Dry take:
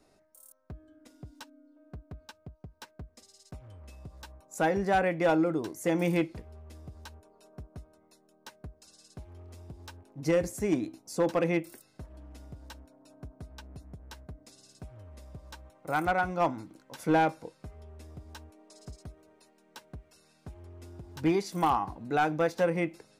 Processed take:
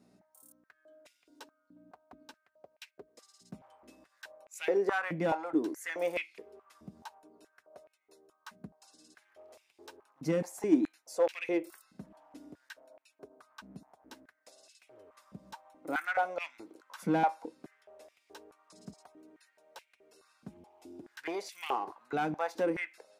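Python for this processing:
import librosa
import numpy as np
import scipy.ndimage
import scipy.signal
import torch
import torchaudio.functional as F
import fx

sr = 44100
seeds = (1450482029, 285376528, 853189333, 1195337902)

p1 = fx.add_hum(x, sr, base_hz=60, snr_db=29)
p2 = fx.band_shelf(p1, sr, hz=1400.0, db=-8.5, octaves=1.1, at=(20.57, 21.0))
p3 = 10.0 ** (-34.5 / 20.0) * np.tanh(p2 / 10.0 ** (-34.5 / 20.0))
p4 = p2 + (p3 * librosa.db_to_amplitude(-6.5))
p5 = fx.filter_held_highpass(p4, sr, hz=4.7, low_hz=200.0, high_hz=2400.0)
y = p5 * librosa.db_to_amplitude(-8.0)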